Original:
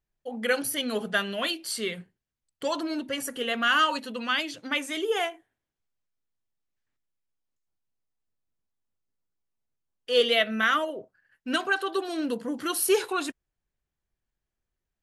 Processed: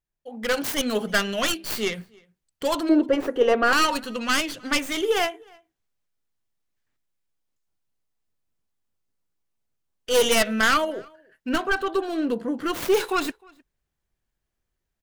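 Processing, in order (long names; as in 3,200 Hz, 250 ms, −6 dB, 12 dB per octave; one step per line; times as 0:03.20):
stylus tracing distortion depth 0.5 ms
hard clipping −18.5 dBFS, distortion −14 dB
0:02.89–0:03.73: drawn EQ curve 240 Hz 0 dB, 340 Hz +14 dB, 7,500 Hz −15 dB
slap from a distant wall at 53 metres, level −27 dB
automatic gain control gain up to 9 dB
0:11.49–0:12.94: high-shelf EQ 2,700 Hz −10 dB
level −4.5 dB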